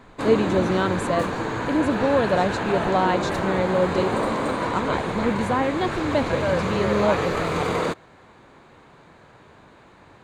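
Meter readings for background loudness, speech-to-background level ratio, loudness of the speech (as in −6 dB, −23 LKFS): −25.5 LKFS, 1.0 dB, −24.5 LKFS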